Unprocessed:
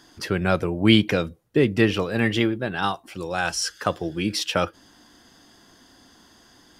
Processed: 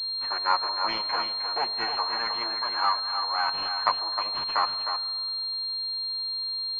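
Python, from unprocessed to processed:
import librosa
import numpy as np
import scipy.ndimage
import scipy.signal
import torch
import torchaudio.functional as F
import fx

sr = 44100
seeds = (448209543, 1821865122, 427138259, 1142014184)

p1 = fx.lower_of_two(x, sr, delay_ms=8.5)
p2 = fx.highpass_res(p1, sr, hz=1000.0, q=4.9)
p3 = p2 + fx.echo_single(p2, sr, ms=310, db=-7.0, dry=0)
p4 = fx.rev_freeverb(p3, sr, rt60_s=2.0, hf_ratio=0.65, predelay_ms=75, drr_db=15.5)
p5 = fx.pwm(p4, sr, carrier_hz=4200.0)
y = p5 * librosa.db_to_amplitude(-5.5)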